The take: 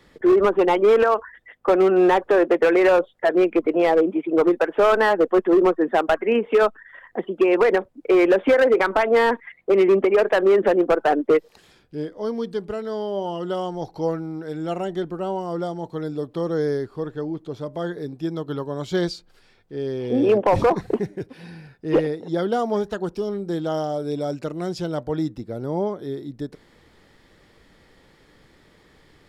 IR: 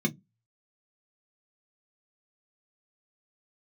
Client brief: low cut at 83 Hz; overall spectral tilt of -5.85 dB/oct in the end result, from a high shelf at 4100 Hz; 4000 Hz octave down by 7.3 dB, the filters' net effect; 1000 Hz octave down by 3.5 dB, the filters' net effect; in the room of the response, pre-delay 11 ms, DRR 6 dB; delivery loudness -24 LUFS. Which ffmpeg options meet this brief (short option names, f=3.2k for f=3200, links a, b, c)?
-filter_complex "[0:a]highpass=83,equalizer=f=1k:t=o:g=-4,equalizer=f=4k:t=o:g=-5,highshelf=f=4.1k:g=-9,asplit=2[a][b];[1:a]atrim=start_sample=2205,adelay=11[c];[b][c]afir=irnorm=-1:irlink=0,volume=-13dB[d];[a][d]amix=inputs=2:normalize=0,volume=-6dB"